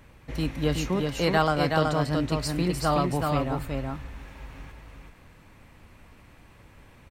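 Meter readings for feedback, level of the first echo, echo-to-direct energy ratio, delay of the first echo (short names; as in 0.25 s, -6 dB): no steady repeat, -3.5 dB, -3.5 dB, 0.374 s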